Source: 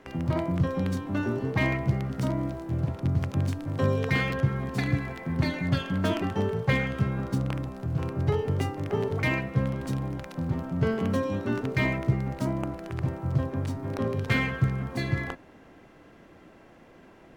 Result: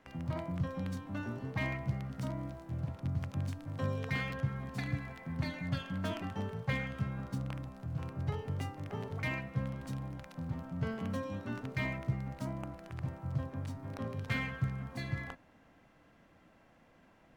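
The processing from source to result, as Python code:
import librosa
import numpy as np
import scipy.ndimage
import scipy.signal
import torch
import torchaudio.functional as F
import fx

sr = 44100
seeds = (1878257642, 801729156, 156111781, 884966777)

y = fx.peak_eq(x, sr, hz=380.0, db=-9.5, octaves=0.54)
y = y * 10.0 ** (-9.0 / 20.0)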